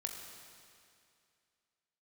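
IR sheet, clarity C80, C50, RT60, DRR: 4.5 dB, 4.0 dB, 2.4 s, 2.0 dB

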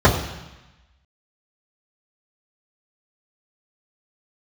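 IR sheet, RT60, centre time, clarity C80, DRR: 1.0 s, 28 ms, 9.5 dB, −9.5 dB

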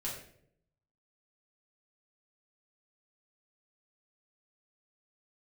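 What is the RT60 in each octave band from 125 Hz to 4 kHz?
1.0, 0.85, 0.80, 0.55, 0.55, 0.45 seconds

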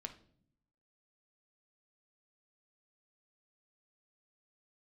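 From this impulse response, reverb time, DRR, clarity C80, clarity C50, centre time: non-exponential decay, 5.5 dB, 17.5 dB, 12.5 dB, 8 ms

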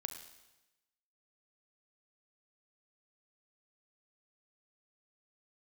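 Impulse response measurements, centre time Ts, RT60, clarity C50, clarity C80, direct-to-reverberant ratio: 20 ms, 1.0 s, 8.0 dB, 9.5 dB, 6.5 dB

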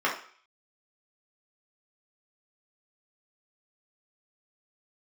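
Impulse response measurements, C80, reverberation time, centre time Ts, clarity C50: 12.0 dB, 0.50 s, 26 ms, 7.0 dB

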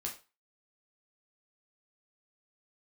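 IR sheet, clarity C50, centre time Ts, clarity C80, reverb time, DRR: 10.0 dB, 19 ms, 16.0 dB, 0.30 s, −1.0 dB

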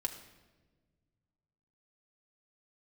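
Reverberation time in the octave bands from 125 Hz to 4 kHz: 2.8, 2.1, 1.6, 1.1, 1.0, 0.90 seconds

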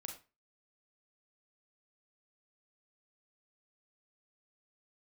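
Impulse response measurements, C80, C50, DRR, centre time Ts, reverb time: 13.5 dB, 7.5 dB, 2.5 dB, 21 ms, 0.30 s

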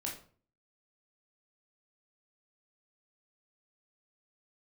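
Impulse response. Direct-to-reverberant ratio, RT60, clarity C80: −2.5 dB, 0.45 s, 12.0 dB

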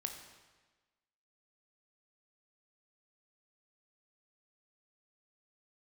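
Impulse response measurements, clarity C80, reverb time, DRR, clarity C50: 8.0 dB, 1.3 s, 4.5 dB, 6.5 dB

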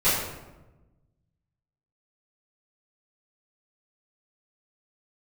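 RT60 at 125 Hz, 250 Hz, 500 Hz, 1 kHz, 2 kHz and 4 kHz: 1.8, 1.5, 1.2, 1.0, 0.80, 0.65 seconds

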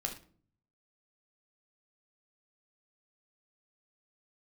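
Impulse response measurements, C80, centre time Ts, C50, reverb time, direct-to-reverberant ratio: 14.5 dB, 15 ms, 9.5 dB, non-exponential decay, 3.0 dB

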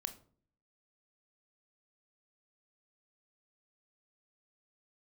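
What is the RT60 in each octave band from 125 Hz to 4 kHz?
0.75, 0.70, 0.55, 0.45, 0.30, 0.30 seconds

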